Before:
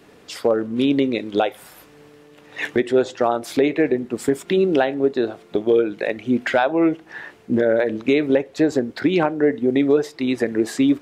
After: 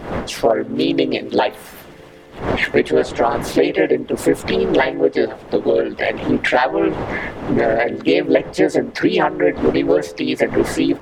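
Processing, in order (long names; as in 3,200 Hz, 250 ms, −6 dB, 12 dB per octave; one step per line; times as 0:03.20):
wind on the microphone 590 Hz −34 dBFS
high-shelf EQ 3,900 Hz −2.5 dB
hum removal 215.2 Hz, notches 8
in parallel at 0 dB: downward compressor, threshold −29 dBFS, peak gain reduction 16 dB
on the sum: hollow resonant body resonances 1,700/2,800 Hz, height 7 dB, ringing for 20 ms
pitch-shifted copies added +3 semitones −1 dB, +5 semitones −17 dB
harmonic and percussive parts rebalanced percussive +6 dB
level −5.5 dB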